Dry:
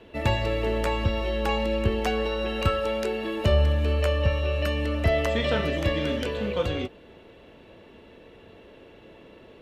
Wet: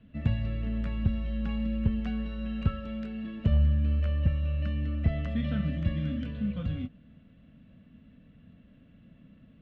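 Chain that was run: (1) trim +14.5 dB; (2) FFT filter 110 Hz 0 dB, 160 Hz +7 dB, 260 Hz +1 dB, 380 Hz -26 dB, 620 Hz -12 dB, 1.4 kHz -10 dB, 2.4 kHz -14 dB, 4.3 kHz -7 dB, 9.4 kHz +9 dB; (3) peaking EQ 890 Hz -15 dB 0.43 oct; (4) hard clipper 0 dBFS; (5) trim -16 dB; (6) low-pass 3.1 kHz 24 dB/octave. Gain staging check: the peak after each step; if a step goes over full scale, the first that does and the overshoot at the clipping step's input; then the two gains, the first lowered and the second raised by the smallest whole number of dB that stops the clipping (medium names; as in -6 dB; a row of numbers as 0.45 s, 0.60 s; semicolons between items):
+2.5 dBFS, +4.5 dBFS, +4.0 dBFS, 0.0 dBFS, -16.0 dBFS, -16.0 dBFS; step 1, 4.0 dB; step 1 +10.5 dB, step 5 -12 dB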